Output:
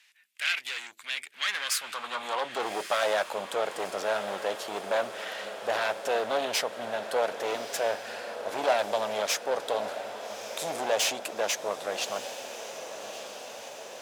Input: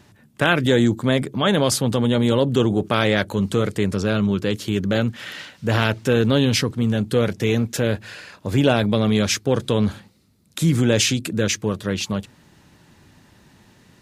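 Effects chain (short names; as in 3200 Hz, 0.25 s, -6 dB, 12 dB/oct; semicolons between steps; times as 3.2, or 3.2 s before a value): overloaded stage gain 15 dB; tube stage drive 19 dB, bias 0.7; high-pass sweep 2300 Hz -> 680 Hz, 1.27–2.74; on a send: diffused feedback echo 1.232 s, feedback 67%, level -10.5 dB; on the sum: gain -2 dB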